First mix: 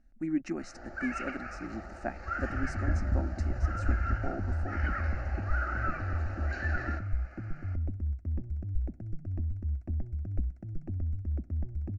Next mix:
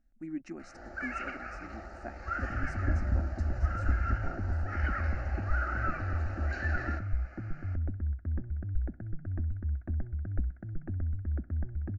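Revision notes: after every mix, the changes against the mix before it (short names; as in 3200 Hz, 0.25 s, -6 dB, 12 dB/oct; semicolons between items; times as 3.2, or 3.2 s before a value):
speech -7.5 dB; second sound: add synth low-pass 1600 Hz, resonance Q 5.3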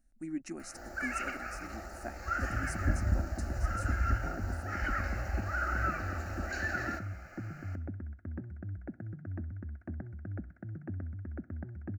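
second sound: add HPF 100 Hz 24 dB/oct; master: remove air absorption 170 m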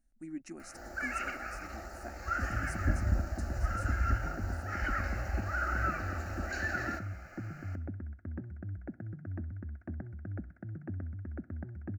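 speech -4.0 dB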